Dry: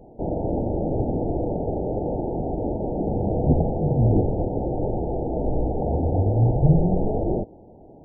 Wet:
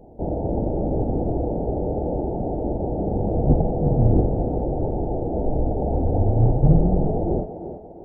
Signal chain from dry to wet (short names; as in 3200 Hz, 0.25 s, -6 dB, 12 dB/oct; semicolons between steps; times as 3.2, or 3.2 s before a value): octaver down 2 oct, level -2 dB; thinning echo 0.346 s, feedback 45%, high-pass 240 Hz, level -8.5 dB